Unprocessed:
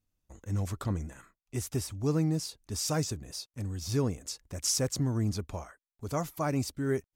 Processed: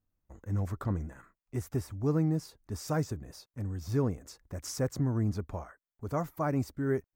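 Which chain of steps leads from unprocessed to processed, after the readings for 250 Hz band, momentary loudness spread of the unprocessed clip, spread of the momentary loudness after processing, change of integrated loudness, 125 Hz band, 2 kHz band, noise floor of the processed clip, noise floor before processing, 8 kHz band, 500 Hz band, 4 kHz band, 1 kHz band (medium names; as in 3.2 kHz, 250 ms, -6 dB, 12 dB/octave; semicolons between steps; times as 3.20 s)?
0.0 dB, 12 LU, 13 LU, -1.0 dB, 0.0 dB, -1.5 dB, under -85 dBFS, under -85 dBFS, -11.5 dB, 0.0 dB, -11.5 dB, 0.0 dB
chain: high-order bell 5.5 kHz -11.5 dB 2.6 oct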